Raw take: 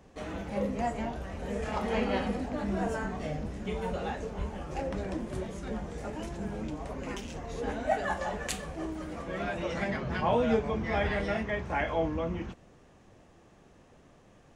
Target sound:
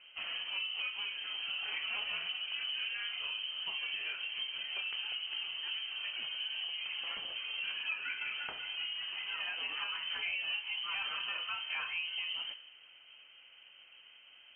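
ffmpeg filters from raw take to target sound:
ffmpeg -i in.wav -af "bandreject=frequency=61.46:width_type=h:width=4,bandreject=frequency=122.92:width_type=h:width=4,bandreject=frequency=184.38:width_type=h:width=4,bandreject=frequency=245.84:width_type=h:width=4,bandreject=frequency=307.3:width_type=h:width=4,bandreject=frequency=368.76:width_type=h:width=4,bandreject=frequency=430.22:width_type=h:width=4,bandreject=frequency=491.68:width_type=h:width=4,bandreject=frequency=553.14:width_type=h:width=4,bandreject=frequency=614.6:width_type=h:width=4,bandreject=frequency=676.06:width_type=h:width=4,bandreject=frequency=737.52:width_type=h:width=4,bandreject=frequency=798.98:width_type=h:width=4,bandreject=frequency=860.44:width_type=h:width=4,bandreject=frequency=921.9:width_type=h:width=4,bandreject=frequency=983.36:width_type=h:width=4,bandreject=frequency=1044.82:width_type=h:width=4,bandreject=frequency=1106.28:width_type=h:width=4,bandreject=frequency=1167.74:width_type=h:width=4,bandreject=frequency=1229.2:width_type=h:width=4,bandreject=frequency=1290.66:width_type=h:width=4,bandreject=frequency=1352.12:width_type=h:width=4,bandreject=frequency=1413.58:width_type=h:width=4,bandreject=frequency=1475.04:width_type=h:width=4,bandreject=frequency=1536.5:width_type=h:width=4,bandreject=frequency=1597.96:width_type=h:width=4,bandreject=frequency=1659.42:width_type=h:width=4,bandreject=frequency=1720.88:width_type=h:width=4,bandreject=frequency=1782.34:width_type=h:width=4,bandreject=frequency=1843.8:width_type=h:width=4,bandreject=frequency=1905.26:width_type=h:width=4,bandreject=frequency=1966.72:width_type=h:width=4,bandreject=frequency=2028.18:width_type=h:width=4,bandreject=frequency=2089.64:width_type=h:width=4,bandreject=frequency=2151.1:width_type=h:width=4,bandreject=frequency=2212.56:width_type=h:width=4,bandreject=frequency=2274.02:width_type=h:width=4,acompressor=threshold=-36dB:ratio=4,lowpass=frequency=2700:width_type=q:width=0.5098,lowpass=frequency=2700:width_type=q:width=0.6013,lowpass=frequency=2700:width_type=q:width=0.9,lowpass=frequency=2700:width_type=q:width=2.563,afreqshift=-3200" out.wav

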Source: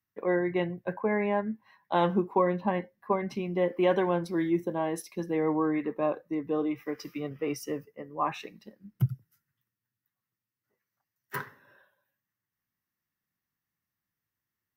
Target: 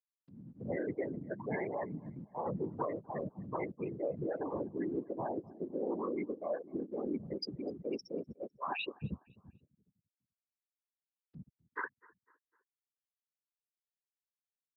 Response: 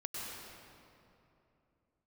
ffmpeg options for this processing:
-filter_complex "[0:a]areverse,acompressor=threshold=-37dB:ratio=5,areverse,acrossover=split=210[link_01][link_02];[link_02]adelay=430[link_03];[link_01][link_03]amix=inputs=2:normalize=0,aeval=exprs='0.0211*(abs(mod(val(0)/0.0211+3,4)-2)-1)':channel_layout=same,afftfilt=real='re*gte(hypot(re,im),0.0224)':imag='im*gte(hypot(re,im),0.0224)':win_size=1024:overlap=0.75,acompressor=mode=upward:threshold=-58dB:ratio=2.5,asplit=2[link_04][link_05];[link_05]adelay=252,lowpass=frequency=2900:poles=1,volume=-23dB,asplit=2[link_06][link_07];[link_07]adelay=252,lowpass=frequency=2900:poles=1,volume=0.47,asplit=2[link_08][link_09];[link_09]adelay=252,lowpass=frequency=2900:poles=1,volume=0.47[link_10];[link_06][link_08][link_10]amix=inputs=3:normalize=0[link_11];[link_04][link_11]amix=inputs=2:normalize=0,aresample=11025,aresample=44100,aemphasis=mode=production:type=75fm,afftfilt=real='hypot(re,im)*cos(2*PI*random(0))':imag='hypot(re,im)*sin(2*PI*random(1))':win_size=512:overlap=0.75,highpass=95,volume=10.5dB"

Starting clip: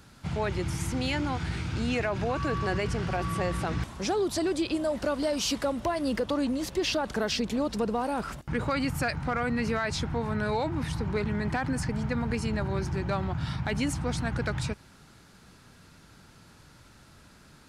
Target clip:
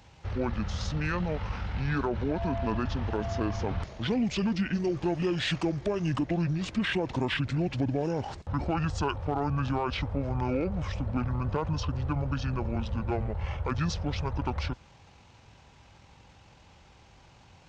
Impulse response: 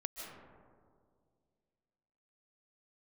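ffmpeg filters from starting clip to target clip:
-af "highpass=frequency=67:width=0.5412,highpass=frequency=67:width=1.3066,asetrate=26222,aresample=44100,atempo=1.68179"

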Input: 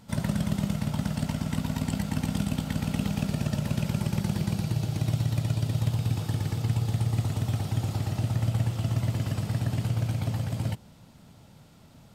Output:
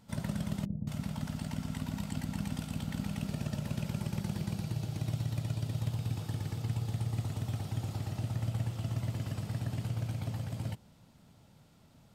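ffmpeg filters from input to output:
ffmpeg -i in.wav -filter_complex "[0:a]asettb=1/sr,asplit=3[link_01][link_02][link_03];[link_01]atrim=end=0.654[link_04];[link_02]atrim=start=0.65:end=3.25,asetpts=PTS-STARTPTS,afade=type=in:duration=0.004:curve=qsin,afade=type=out:start_time=2.596:duration=0.004:curve=qsin,acrossover=split=470[link_05][link_06];[link_06]adelay=220[link_07];[link_05][link_07]amix=inputs=2:normalize=0,atrim=end_sample=114660[link_08];[link_03]atrim=start=3.246[link_09];[link_04][link_08]acrossfade=duration=0.004:curve1=hsin:curve2=qsin[link_10];[link_10][link_09]acrossfade=duration=0.004:curve1=qsin:curve2=hsin,volume=-7.5dB" out.wav

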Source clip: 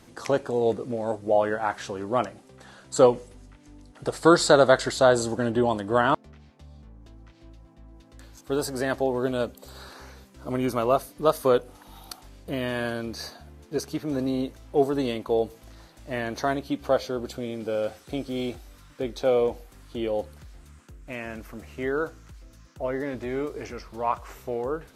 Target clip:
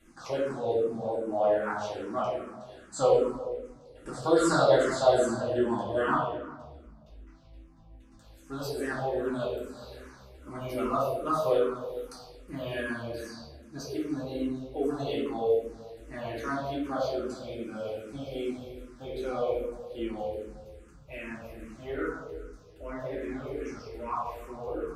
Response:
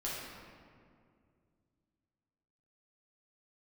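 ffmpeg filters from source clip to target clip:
-filter_complex "[1:a]atrim=start_sample=2205,asetrate=88200,aresample=44100[link_01];[0:a][link_01]afir=irnorm=-1:irlink=0,asplit=2[link_02][link_03];[link_03]afreqshift=-2.5[link_04];[link_02][link_04]amix=inputs=2:normalize=1"

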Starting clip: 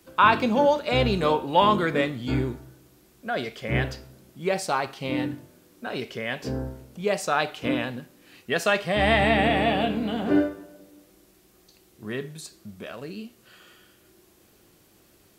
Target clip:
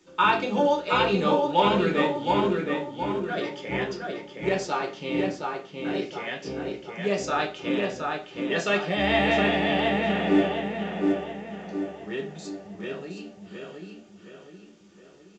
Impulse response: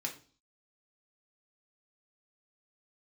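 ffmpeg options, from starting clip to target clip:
-filter_complex "[0:a]asplit=2[link_01][link_02];[link_02]adelay=718,lowpass=frequency=3000:poles=1,volume=-3dB,asplit=2[link_03][link_04];[link_04]adelay=718,lowpass=frequency=3000:poles=1,volume=0.47,asplit=2[link_05][link_06];[link_06]adelay=718,lowpass=frequency=3000:poles=1,volume=0.47,asplit=2[link_07][link_08];[link_08]adelay=718,lowpass=frequency=3000:poles=1,volume=0.47,asplit=2[link_09][link_10];[link_10]adelay=718,lowpass=frequency=3000:poles=1,volume=0.47,asplit=2[link_11][link_12];[link_12]adelay=718,lowpass=frequency=3000:poles=1,volume=0.47[link_13];[link_01][link_03][link_05][link_07][link_09][link_11][link_13]amix=inputs=7:normalize=0[link_14];[1:a]atrim=start_sample=2205,afade=type=out:start_time=0.18:duration=0.01,atrim=end_sample=8379,asetrate=61740,aresample=44100[link_15];[link_14][link_15]afir=irnorm=-1:irlink=0" -ar 16000 -c:a pcm_alaw

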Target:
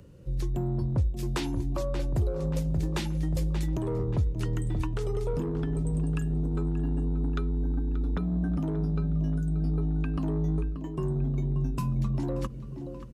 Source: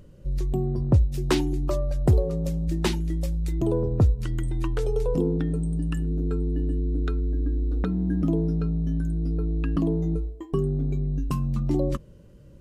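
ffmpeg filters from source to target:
ffmpeg -i in.wav -filter_complex "[0:a]asetrate=42336,aresample=44100,asplit=2[link_01][link_02];[link_02]adelay=581,lowpass=frequency=4100:poles=1,volume=-14dB,asplit=2[link_03][link_04];[link_04]adelay=581,lowpass=frequency=4100:poles=1,volume=0.5,asplit=2[link_05][link_06];[link_06]adelay=581,lowpass=frequency=4100:poles=1,volume=0.5,asplit=2[link_07][link_08];[link_08]adelay=581,lowpass=frequency=4100:poles=1,volume=0.5,asplit=2[link_09][link_10];[link_10]adelay=581,lowpass=frequency=4100:poles=1,volume=0.5[link_11];[link_01][link_03][link_05][link_07][link_09][link_11]amix=inputs=6:normalize=0,alimiter=limit=-18dB:level=0:latency=1:release=202,highpass=48,acrossover=split=180|590|1500[link_12][link_13][link_14][link_15];[link_13]asoftclip=type=tanh:threshold=-32.5dB[link_16];[link_12][link_16][link_14][link_15]amix=inputs=4:normalize=0" out.wav

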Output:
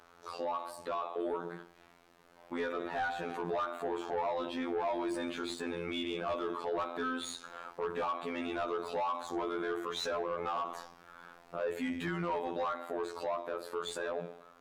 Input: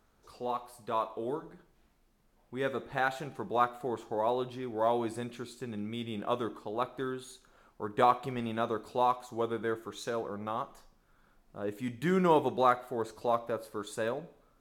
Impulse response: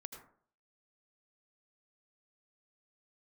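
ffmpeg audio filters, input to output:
-filter_complex "[0:a]bandreject=frequency=50:width_type=h:width=6,bandreject=frequency=100:width_type=h:width=6,bandreject=frequency=150:width_type=h:width=6,bandreject=frequency=200:width_type=h:width=6,bandreject=frequency=250:width_type=h:width=6,bandreject=frequency=300:width_type=h:width=6,bandreject=frequency=350:width_type=h:width=6,bandreject=frequency=400:width_type=h:width=6,acompressor=threshold=-37dB:ratio=4,afftfilt=real='hypot(re,im)*cos(PI*b)':imag='0':win_size=2048:overlap=0.75,dynaudnorm=framelen=410:gausssize=13:maxgain=4dB,asplit=2[link_01][link_02];[link_02]highpass=frequency=720:poles=1,volume=24dB,asoftclip=type=tanh:threshold=-17dB[link_03];[link_01][link_03]amix=inputs=2:normalize=0,lowpass=frequency=2400:poles=1,volume=-6dB,alimiter=level_in=3dB:limit=-24dB:level=0:latency=1:release=18,volume=-3dB"

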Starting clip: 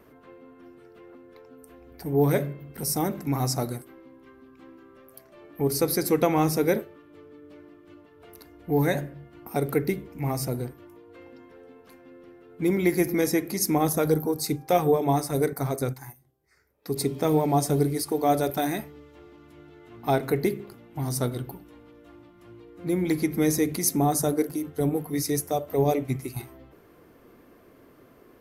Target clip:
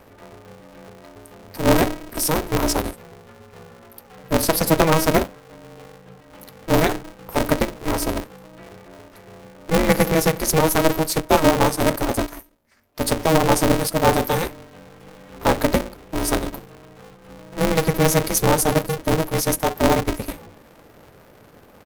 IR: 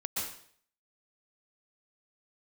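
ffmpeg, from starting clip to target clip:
-af "atempo=1.3,aeval=exprs='val(0)*sgn(sin(2*PI*160*n/s))':channel_layout=same,volume=6dB"

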